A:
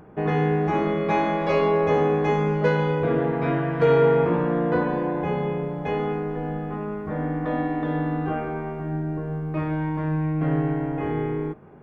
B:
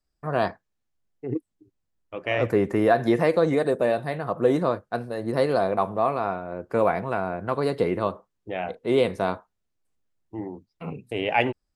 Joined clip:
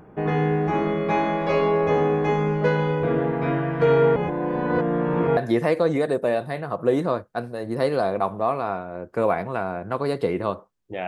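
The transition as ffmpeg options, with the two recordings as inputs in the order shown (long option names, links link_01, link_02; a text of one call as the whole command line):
ffmpeg -i cue0.wav -i cue1.wav -filter_complex "[0:a]apad=whole_dur=11.07,atrim=end=11.07,asplit=2[link_01][link_02];[link_01]atrim=end=4.162[link_03];[link_02]atrim=start=4.158:end=5.372,asetpts=PTS-STARTPTS,areverse[link_04];[1:a]atrim=start=2.938:end=8.64[link_05];[link_03][link_04]acrossfade=duration=0.004:curve1=hsin:curve2=hsin[link_06];[link_06][link_05]acrossfade=duration=0.004:curve1=hsin:curve2=hsin" out.wav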